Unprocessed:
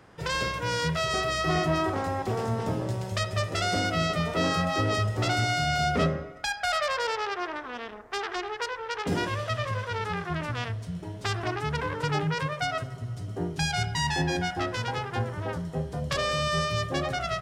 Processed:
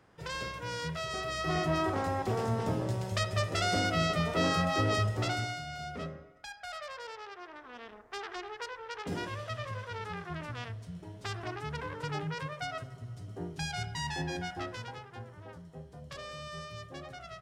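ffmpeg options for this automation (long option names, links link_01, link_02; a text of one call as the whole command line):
ffmpeg -i in.wav -af "volume=4dB,afade=type=in:start_time=1.17:duration=0.84:silence=0.473151,afade=type=out:start_time=5.04:duration=0.59:silence=0.237137,afade=type=in:start_time=7.48:duration=0.44:silence=0.473151,afade=type=out:start_time=14.62:duration=0.44:silence=0.421697" out.wav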